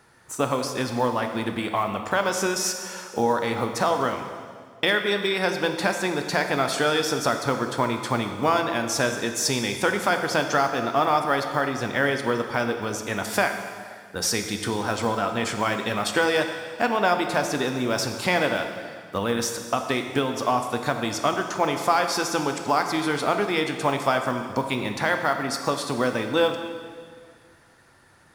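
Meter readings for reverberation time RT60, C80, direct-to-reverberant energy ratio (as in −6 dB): 1.9 s, 8.0 dB, 5.0 dB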